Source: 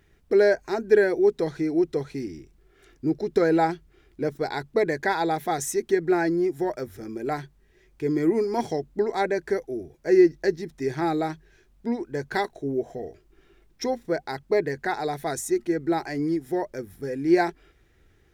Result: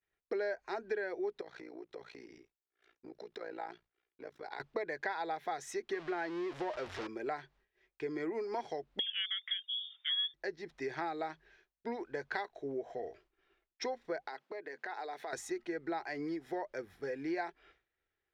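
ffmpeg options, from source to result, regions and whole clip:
-filter_complex "[0:a]asettb=1/sr,asplit=3[s0][s1][s2];[s0]atrim=end=1.414[s3];[s1]atrim=start=1.41:end=4.6,asetpts=PTS-STARTPTS,afade=t=in:d=0.004:c=qsin,afade=t=out:st=3.186:d=0.004:c=qsin,lowshelf=f=120:g=-10.5,tremolo=f=58:d=0.889,acompressor=threshold=0.01:ratio=3:attack=3.2:release=140:knee=1:detection=peak[s4];[s2]atrim=start=4.596[s5];[s3][s4]acrossfade=d=0.004:c1=hsin:c2=qsin[s6];[s6][s5]acrossfade=d=0.004:c1=qsin:c2=hsin,asettb=1/sr,asplit=3[s7][s8][s9];[s7]atrim=end=5.934[s10];[s8]atrim=start=5.93:end=7.07,asetpts=PTS-STARTPTS,afade=t=in:d=0.004:c=qsin,afade=t=out:st=1.136:d=0.004:c=qsin,aeval=exprs='val(0)+0.5*0.0299*sgn(val(0))':c=same,lowpass=7400[s11];[s9]atrim=start=7.066[s12];[s10][s11]acrossfade=d=0.004:c1=hsin:c2=qsin[s13];[s13][s12]acrossfade=d=0.004:c1=qsin:c2=hsin,asettb=1/sr,asplit=3[s14][s15][s16];[s14]atrim=end=8.994[s17];[s15]atrim=start=8.99:end=10.34,asetpts=PTS-STARTPTS,afade=t=in:d=0.004:c=qsin,afade=t=out:st=1.346:d=0.004:c=qsin,highpass=67,lowpass=f=3100:t=q:w=0.5098,lowpass=f=3100:t=q:w=0.6013,lowpass=f=3100:t=q:w=0.9,lowpass=f=3100:t=q:w=2.563,afreqshift=-3700[s18];[s16]atrim=start=10.336[s19];[s17][s18]acrossfade=d=0.004:c1=hsin:c2=qsin[s20];[s20][s19]acrossfade=d=0.004:c1=qsin:c2=hsin,asettb=1/sr,asplit=3[s21][s22][s23];[s21]atrim=end=14.284[s24];[s22]atrim=start=14.28:end=15.33,asetpts=PTS-STARTPTS,afade=t=in:d=0.004:c=qsin,afade=t=out:st=1.046:d=0.004:c=qsin,highpass=f=220:w=0.5412,highpass=f=220:w=1.3066,acompressor=threshold=0.0158:ratio=6:attack=3.2:release=140:knee=1:detection=peak[s25];[s23]atrim=start=15.326[s26];[s24][s25]acrossfade=d=0.004:c1=hsin:c2=qsin[s27];[s27][s26]acrossfade=d=0.004:c1=qsin:c2=hsin,acrossover=split=470 4800:gain=0.158 1 0.0891[s28][s29][s30];[s28][s29][s30]amix=inputs=3:normalize=0,agate=range=0.0224:threshold=0.00158:ratio=3:detection=peak,acompressor=threshold=0.0178:ratio=5"

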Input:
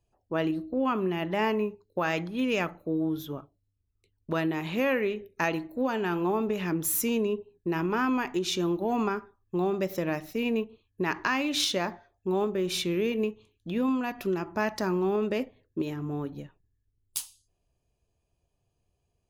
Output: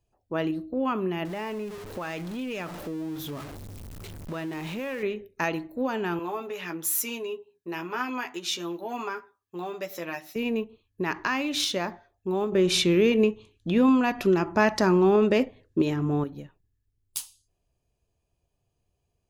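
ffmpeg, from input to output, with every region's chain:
-filter_complex "[0:a]asettb=1/sr,asplit=3[s0][s1][s2];[s0]atrim=end=1.254[s3];[s1]atrim=start=1.25:end=5.03,asetpts=PTS-STARTPTS,afade=t=in:d=0.004:c=qsin,afade=t=out:st=3.776:d=0.004:c=qsin,aeval=exprs='val(0)+0.5*0.0188*sgn(val(0))':c=same,acompressor=threshold=0.0224:ratio=2.5:attack=3.2:release=140:knee=1:detection=peak[s4];[s2]atrim=start=5.026[s5];[s3][s4]acrossfade=d=0.004:c1=hsin:c2=qsin[s6];[s6][s5]acrossfade=d=0.004:c1=qsin:c2=hsin,asettb=1/sr,asplit=3[s7][s8][s9];[s7]atrim=end=6.194[s10];[s8]atrim=start=6.19:end=10.36,asetpts=PTS-STARTPTS,afade=t=in:d=0.004:c=qsin,afade=t=out:st=4.166:d=0.004:c=qsin,highpass=f=930:p=1,asplit=2[s11][s12];[s12]adelay=12,volume=0.631[s13];[s11][s13]amix=inputs=2:normalize=0,atrim=end_sample=183897[s14];[s9]atrim=start=10.356[s15];[s10][s14]acrossfade=d=0.004:c1=hsin:c2=qsin[s16];[s16][s15]acrossfade=d=0.004:c1=qsin:c2=hsin,asettb=1/sr,asplit=3[s17][s18][s19];[s17]atrim=end=12.524[s20];[s18]atrim=start=12.52:end=16.24,asetpts=PTS-STARTPTS,afade=t=in:d=0.004:c=qsin,afade=t=out:st=3.716:d=0.004:c=qsin,lowpass=9700,acontrast=88[s21];[s19]atrim=start=16.236[s22];[s20][s21]acrossfade=d=0.004:c1=hsin:c2=qsin[s23];[s23][s22]acrossfade=d=0.004:c1=qsin:c2=hsin"

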